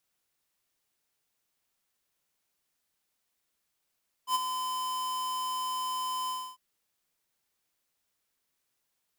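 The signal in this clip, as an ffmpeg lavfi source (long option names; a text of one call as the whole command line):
ffmpeg -f lavfi -i "aevalsrc='0.0562*(2*lt(mod(1020*t,1),0.5)-1)':duration=2.299:sample_rate=44100,afade=type=in:duration=0.08,afade=type=out:start_time=0.08:duration=0.023:silence=0.398,afade=type=out:start_time=2.02:duration=0.279" out.wav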